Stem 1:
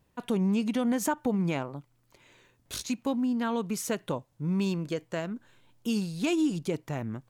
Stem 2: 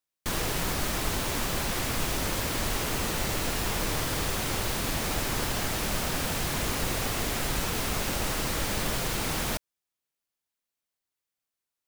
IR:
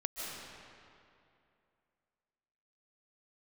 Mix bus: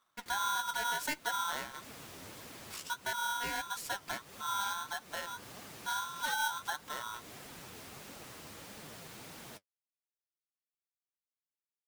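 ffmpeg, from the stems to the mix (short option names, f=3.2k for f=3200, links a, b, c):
-filter_complex "[0:a]aeval=exprs='val(0)*sgn(sin(2*PI*1200*n/s))':c=same,volume=-4dB,asplit=2[a][b];[1:a]highpass=100,volume=-15dB[c];[b]apad=whole_len=523621[d];[c][d]sidechaincompress=threshold=-41dB:ratio=10:attack=5.7:release=250[e];[a][e]amix=inputs=2:normalize=0,flanger=delay=3.3:depth=9.5:regen=40:speed=1.6:shape=triangular"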